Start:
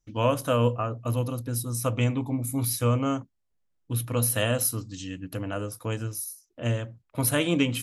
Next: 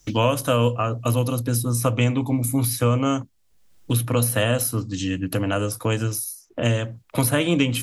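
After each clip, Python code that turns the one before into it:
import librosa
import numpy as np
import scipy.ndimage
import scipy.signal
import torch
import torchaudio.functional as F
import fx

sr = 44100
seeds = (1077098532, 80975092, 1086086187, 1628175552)

y = fx.band_squash(x, sr, depth_pct=70)
y = y * 10.0 ** (5.0 / 20.0)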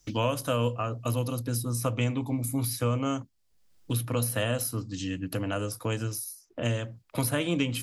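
y = fx.peak_eq(x, sr, hz=4800.0, db=4.0, octaves=0.3)
y = y * 10.0 ** (-7.5 / 20.0)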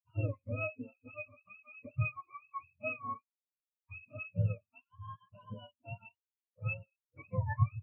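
y = fx.octave_mirror(x, sr, pivot_hz=550.0)
y = fx.spectral_expand(y, sr, expansion=2.5)
y = y * 10.0 ** (-2.0 / 20.0)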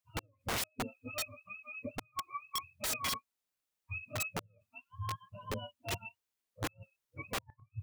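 y = fx.gate_flip(x, sr, shuts_db=-26.0, range_db=-41)
y = (np.mod(10.0 ** (37.0 / 20.0) * y + 1.0, 2.0) - 1.0) / 10.0 ** (37.0 / 20.0)
y = y * 10.0 ** (7.5 / 20.0)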